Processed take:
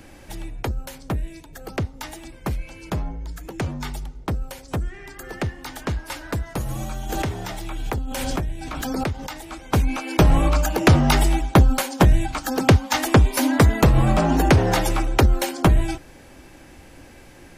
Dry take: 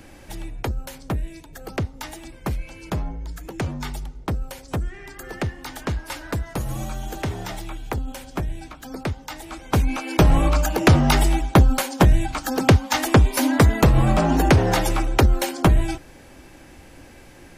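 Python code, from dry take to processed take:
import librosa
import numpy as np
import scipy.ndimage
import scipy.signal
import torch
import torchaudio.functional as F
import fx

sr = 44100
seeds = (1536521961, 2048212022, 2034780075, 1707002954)

y = fx.pre_swell(x, sr, db_per_s=22.0, at=(7.09, 9.43))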